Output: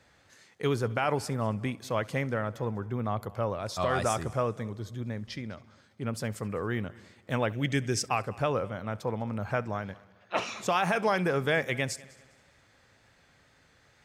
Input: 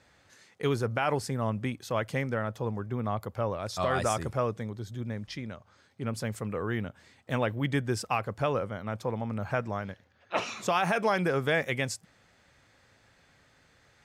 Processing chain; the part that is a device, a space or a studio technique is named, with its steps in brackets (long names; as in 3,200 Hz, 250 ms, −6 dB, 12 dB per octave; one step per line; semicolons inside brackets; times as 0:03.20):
multi-head tape echo (echo machine with several playback heads 67 ms, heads first and third, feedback 49%, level −23 dB; tape wow and flutter 23 cents)
0:07.53–0:08.06: graphic EQ with 15 bands 1,000 Hz −9 dB, 2,500 Hz +4 dB, 6,300 Hz +10 dB